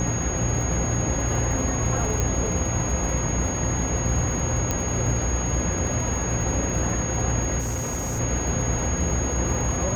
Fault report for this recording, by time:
buzz 60 Hz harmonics 27 -30 dBFS
crackle 92/s -32 dBFS
tone 6600 Hz -29 dBFS
2.2 pop -11 dBFS
4.71 pop -10 dBFS
7.59–8.2 clipped -24 dBFS

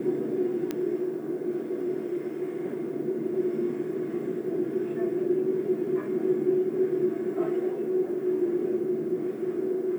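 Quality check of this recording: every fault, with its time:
0.71 pop -16 dBFS

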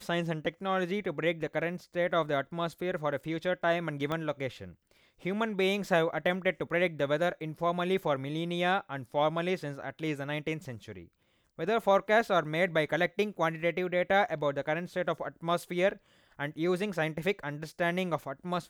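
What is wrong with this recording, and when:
4.12 pop -20 dBFS

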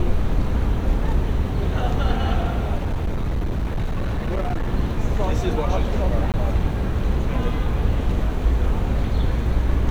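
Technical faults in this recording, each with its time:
2.77–4.72 clipped -19 dBFS
6.32–6.34 gap 18 ms

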